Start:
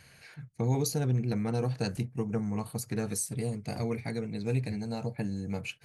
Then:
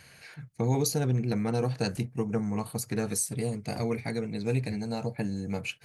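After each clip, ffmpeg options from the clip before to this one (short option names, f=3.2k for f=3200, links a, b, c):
-af "lowshelf=f=130:g=-5.5,volume=3.5dB"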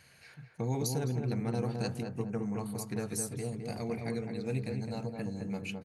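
-filter_complex "[0:a]asplit=2[a][b];[b]adelay=212,lowpass=f=1.3k:p=1,volume=-3.5dB,asplit=2[c][d];[d]adelay=212,lowpass=f=1.3k:p=1,volume=0.41,asplit=2[e][f];[f]adelay=212,lowpass=f=1.3k:p=1,volume=0.41,asplit=2[g][h];[h]adelay=212,lowpass=f=1.3k:p=1,volume=0.41,asplit=2[i][j];[j]adelay=212,lowpass=f=1.3k:p=1,volume=0.41[k];[a][c][e][g][i][k]amix=inputs=6:normalize=0,volume=-6.5dB"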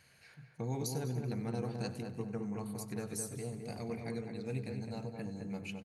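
-af "aecho=1:1:96|192|288|384|480|576:0.168|0.101|0.0604|0.0363|0.0218|0.0131,volume=-4.5dB"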